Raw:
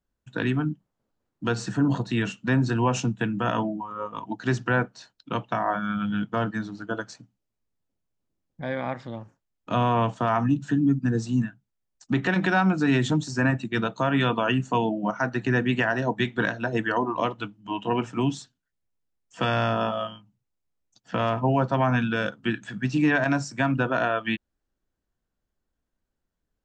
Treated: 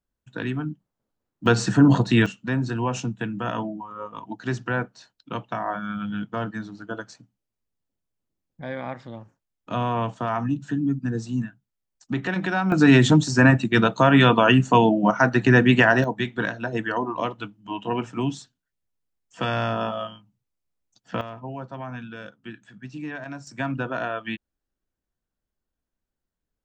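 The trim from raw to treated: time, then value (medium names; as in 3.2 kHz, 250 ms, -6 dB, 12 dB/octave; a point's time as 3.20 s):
-3 dB
from 1.46 s +7.5 dB
from 2.26 s -2.5 dB
from 12.72 s +7.5 dB
from 16.04 s -1 dB
from 21.21 s -12.5 dB
from 23.47 s -4 dB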